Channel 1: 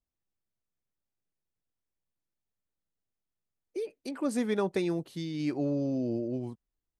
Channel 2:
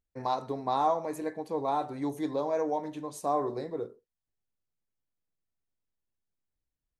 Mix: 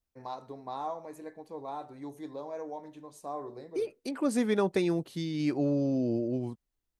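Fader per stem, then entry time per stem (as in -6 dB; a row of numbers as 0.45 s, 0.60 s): +2.0 dB, -9.5 dB; 0.00 s, 0.00 s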